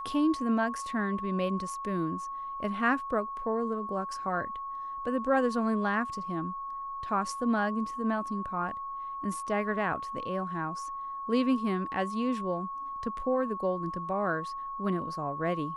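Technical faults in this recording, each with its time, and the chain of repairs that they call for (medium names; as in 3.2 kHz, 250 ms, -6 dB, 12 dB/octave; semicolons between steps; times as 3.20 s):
whine 1.1 kHz -35 dBFS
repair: band-stop 1.1 kHz, Q 30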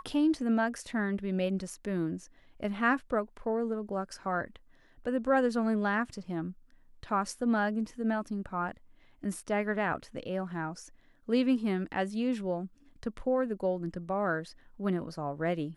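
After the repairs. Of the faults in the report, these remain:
nothing left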